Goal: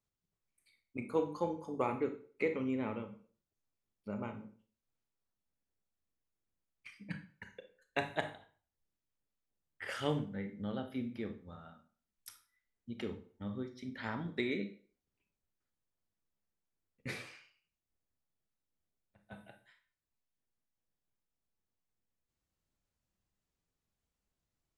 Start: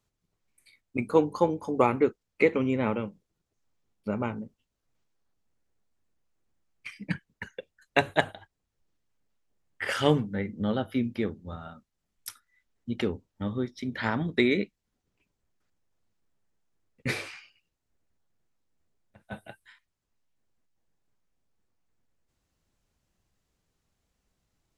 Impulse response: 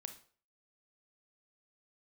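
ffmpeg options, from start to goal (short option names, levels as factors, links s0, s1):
-filter_complex "[1:a]atrim=start_sample=2205[s0];[0:a][s0]afir=irnorm=-1:irlink=0,volume=0.447"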